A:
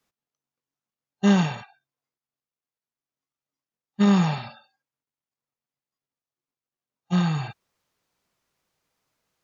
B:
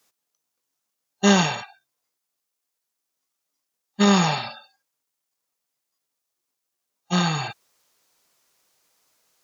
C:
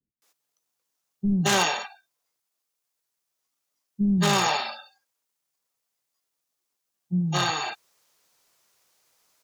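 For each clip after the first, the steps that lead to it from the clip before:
tone controls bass -10 dB, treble +8 dB; trim +6.5 dB
wavefolder -12 dBFS; bands offset in time lows, highs 220 ms, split 260 Hz

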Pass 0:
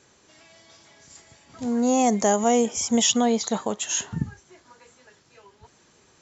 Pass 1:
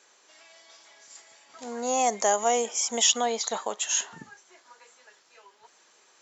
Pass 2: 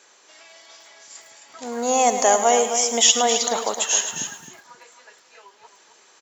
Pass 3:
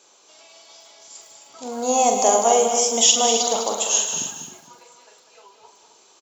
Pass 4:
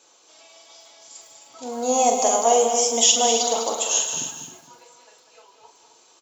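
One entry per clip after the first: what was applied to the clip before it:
high-pass 590 Hz 12 dB/octave
feedback delay 265 ms, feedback 15%, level -9 dB; bit-crushed delay 106 ms, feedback 35%, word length 8-bit, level -11 dB; trim +6 dB
peaking EQ 1.8 kHz -13.5 dB 0.61 oct; on a send: loudspeakers at several distances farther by 15 m -6 dB, 68 m -8 dB
comb of notches 200 Hz

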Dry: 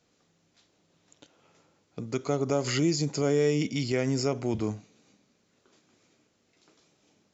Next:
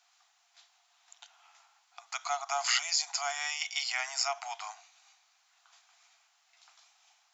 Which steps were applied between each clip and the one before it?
Chebyshev high-pass 690 Hz, order 8; trim +5 dB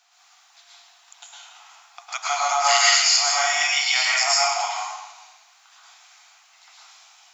plate-style reverb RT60 1.1 s, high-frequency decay 0.95×, pre-delay 95 ms, DRR -6 dB; trim +6.5 dB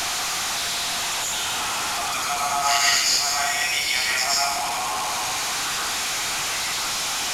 one-bit delta coder 64 kbps, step -17 dBFS; trim -2.5 dB

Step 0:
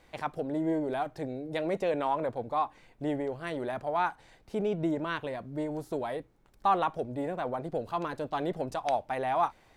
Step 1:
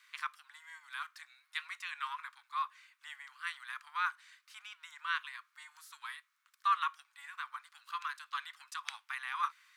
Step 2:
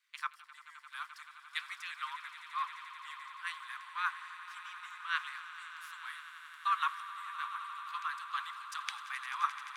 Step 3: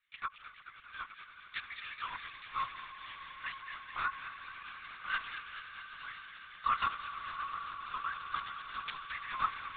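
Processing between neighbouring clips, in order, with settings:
steep high-pass 1.1 kHz 72 dB/octave; trim +1.5 dB
harmonic-percussive split harmonic -6 dB; echo with a slow build-up 87 ms, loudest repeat 8, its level -14 dB; three bands expanded up and down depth 40%
dynamic bell 730 Hz, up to +5 dB, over -51 dBFS, Q 1.3; on a send: feedback echo behind a high-pass 215 ms, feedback 73%, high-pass 2 kHz, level -6 dB; on the sum: LPC vocoder at 8 kHz whisper; trim -2 dB

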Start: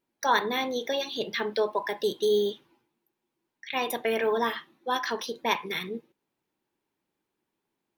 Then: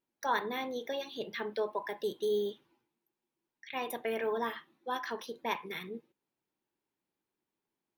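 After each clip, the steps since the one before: dynamic bell 4.9 kHz, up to -6 dB, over -48 dBFS, Q 0.96; trim -7 dB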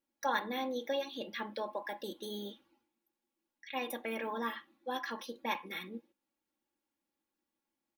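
comb 3.6 ms, depth 79%; trim -2.5 dB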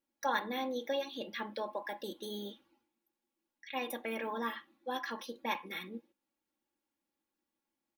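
no audible change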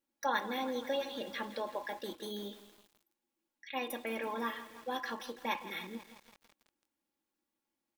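bit-crushed delay 165 ms, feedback 80%, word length 8-bit, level -13.5 dB

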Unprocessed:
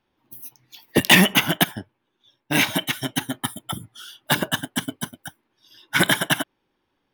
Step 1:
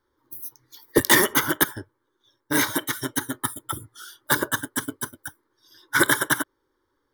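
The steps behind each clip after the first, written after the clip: static phaser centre 710 Hz, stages 6; trim +3 dB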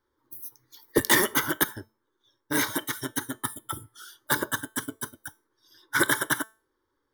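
feedback comb 220 Hz, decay 0.35 s, harmonics all, mix 40%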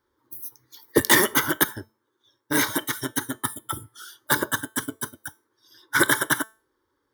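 high-pass 43 Hz; trim +3.5 dB

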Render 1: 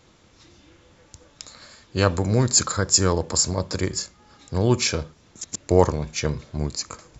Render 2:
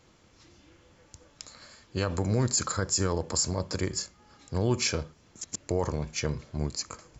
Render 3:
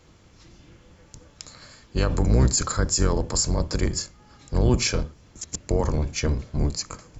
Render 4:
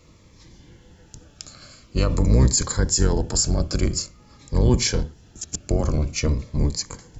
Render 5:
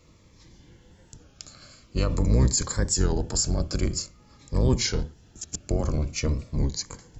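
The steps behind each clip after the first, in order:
band-stop 3.7 kHz, Q 13; peak limiter -11 dBFS, peak gain reduction 9.5 dB; trim -4.5 dB
octave divider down 1 oct, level +4 dB; trim +3.5 dB
Shepard-style phaser falling 0.48 Hz; trim +2.5 dB
warped record 33 1/3 rpm, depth 100 cents; trim -4 dB

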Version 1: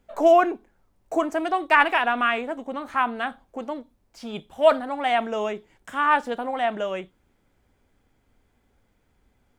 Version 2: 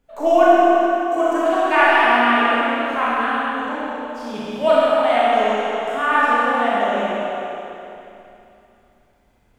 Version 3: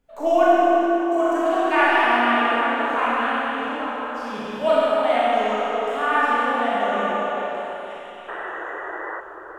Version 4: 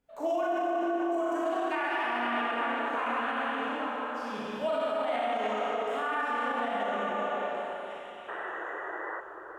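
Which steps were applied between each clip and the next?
tape echo 140 ms, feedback 66%, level -5 dB, low-pass 4.9 kHz; Schroeder reverb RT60 2.7 s, combs from 26 ms, DRR -8 dB; trim -3.5 dB
painted sound noise, 8.28–9.21 s, 310–2000 Hz -28 dBFS; repeats whose band climbs or falls 418 ms, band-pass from 430 Hz, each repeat 1.4 oct, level -3 dB; trim -3.5 dB
high-pass 64 Hz 6 dB/octave; peak limiter -16 dBFS, peak gain reduction 10.5 dB; trim -6 dB

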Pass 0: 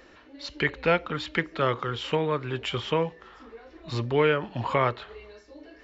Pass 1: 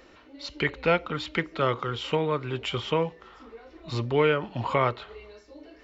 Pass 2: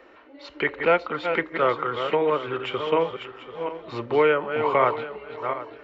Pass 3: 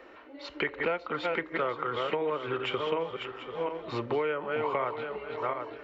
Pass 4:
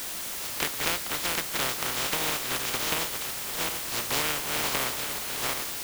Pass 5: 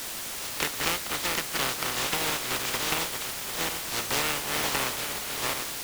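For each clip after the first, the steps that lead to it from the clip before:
band-stop 1.7 kHz, Q 9.4
backward echo that repeats 369 ms, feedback 42%, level -7 dB; three-band isolator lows -15 dB, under 290 Hz, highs -17 dB, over 2.7 kHz; trim +4.5 dB
compression 6:1, threshold -27 dBFS, peak gain reduction 12.5 dB
spectral contrast reduction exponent 0.17; word length cut 6-bit, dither triangular; trim +1 dB
loudspeaker Doppler distortion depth 0.43 ms; trim +1 dB

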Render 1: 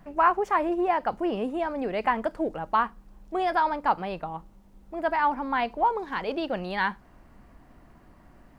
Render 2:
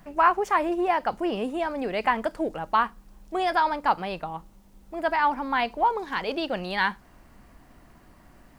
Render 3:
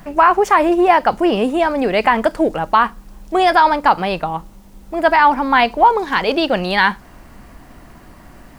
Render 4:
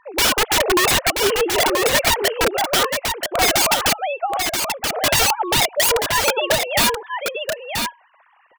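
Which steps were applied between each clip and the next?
treble shelf 2.6 kHz +9 dB
loudness maximiser +13 dB; trim -1 dB
formants replaced by sine waves; integer overflow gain 11.5 dB; on a send: delay 980 ms -5 dB

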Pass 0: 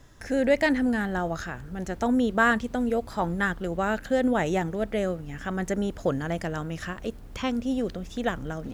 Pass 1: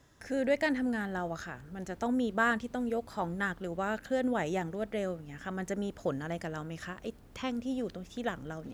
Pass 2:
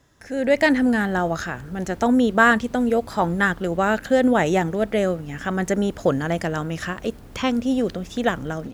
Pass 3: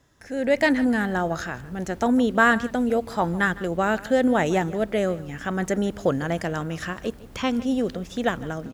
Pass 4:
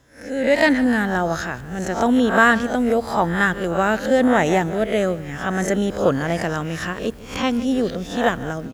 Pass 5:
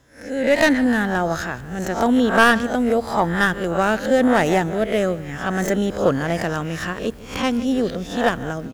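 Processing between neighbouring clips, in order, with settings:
high-pass 96 Hz 6 dB/octave; trim -6.5 dB
level rider gain up to 10.5 dB; trim +2.5 dB
delay 155 ms -19 dB; trim -2.5 dB
reverse spectral sustain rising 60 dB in 0.41 s; trim +3 dB
tracing distortion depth 0.074 ms

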